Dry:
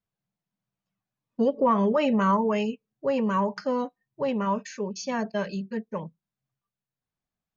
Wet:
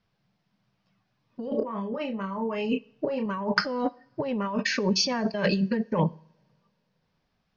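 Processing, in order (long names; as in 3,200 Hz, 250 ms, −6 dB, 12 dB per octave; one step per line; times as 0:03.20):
Chebyshev low-pass filter 5,300 Hz, order 4
compressor whose output falls as the input rises −36 dBFS, ratio −1
0:01.44–0:03.26: double-tracking delay 31 ms −5.5 dB
coupled-rooms reverb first 0.58 s, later 3.5 s, from −26 dB, DRR 19.5 dB
level +7.5 dB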